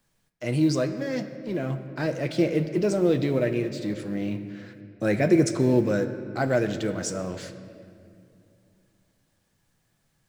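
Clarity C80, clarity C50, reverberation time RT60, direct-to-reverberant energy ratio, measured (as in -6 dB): 11.0 dB, 10.5 dB, 2.5 s, 7.0 dB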